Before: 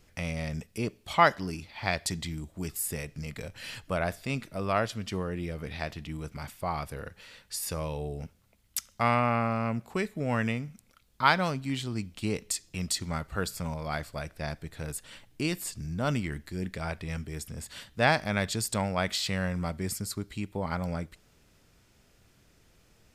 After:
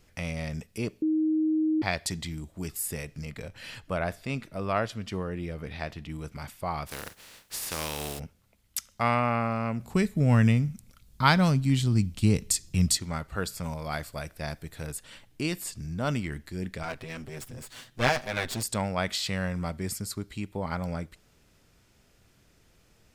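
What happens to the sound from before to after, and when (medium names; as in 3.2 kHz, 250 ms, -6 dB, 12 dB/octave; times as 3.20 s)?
1.02–1.82 s: bleep 313 Hz -22 dBFS
3.25–6.10 s: treble shelf 4.3 kHz -5 dB
6.86–8.18 s: spectral contrast reduction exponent 0.37
9.80–12.97 s: tone controls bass +13 dB, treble +6 dB
13.63–14.87 s: treble shelf 8.9 kHz +10 dB
16.83–18.63 s: comb filter that takes the minimum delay 7.9 ms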